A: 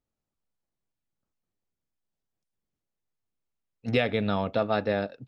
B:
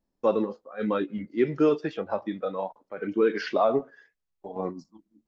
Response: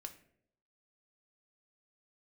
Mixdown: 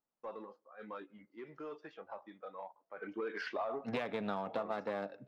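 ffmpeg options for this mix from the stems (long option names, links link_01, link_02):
-filter_complex "[0:a]highshelf=frequency=4400:gain=-6,aeval=exprs='clip(val(0),-1,0.0501)':channel_layout=same,highpass=frequency=140:width=0.5412,highpass=frequency=140:width=1.3066,volume=-10dB,asplit=2[link_01][link_02];[link_02]volume=-6.5dB[link_03];[1:a]alimiter=limit=-17dB:level=0:latency=1:release=72,asplit=2[link_04][link_05];[link_05]highpass=frequency=720:poles=1,volume=9dB,asoftclip=type=tanh:threshold=-17dB[link_06];[link_04][link_06]amix=inputs=2:normalize=0,lowpass=frequency=5200:poles=1,volume=-6dB,volume=-15.5dB,afade=type=in:start_time=2.72:duration=0.36:silence=0.421697,asplit=2[link_07][link_08];[link_08]volume=-16dB[link_09];[2:a]atrim=start_sample=2205[link_10];[link_03][link_09]amix=inputs=2:normalize=0[link_11];[link_11][link_10]afir=irnorm=-1:irlink=0[link_12];[link_01][link_07][link_12]amix=inputs=3:normalize=0,equalizer=frequency=980:width_type=o:width=1.6:gain=8,acompressor=threshold=-33dB:ratio=10"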